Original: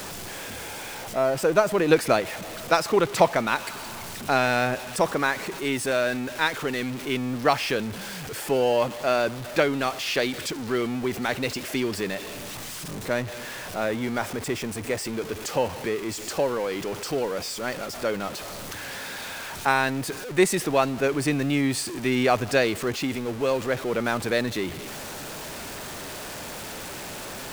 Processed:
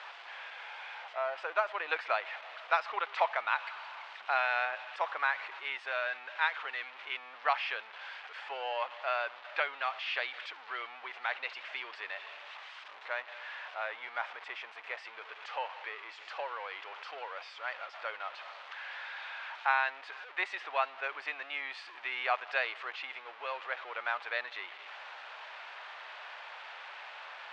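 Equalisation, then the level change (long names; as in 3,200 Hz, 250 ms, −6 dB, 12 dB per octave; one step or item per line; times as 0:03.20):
high-pass filter 790 Hz 24 dB per octave
low-pass filter 3,200 Hz 24 dB per octave
−5.0 dB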